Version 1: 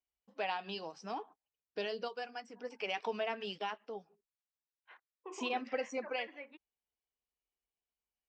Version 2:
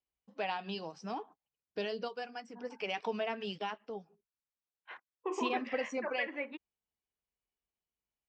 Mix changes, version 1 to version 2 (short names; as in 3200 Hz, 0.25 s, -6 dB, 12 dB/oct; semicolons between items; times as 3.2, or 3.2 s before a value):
second voice +9.5 dB; master: add bell 130 Hz +8.5 dB 1.8 oct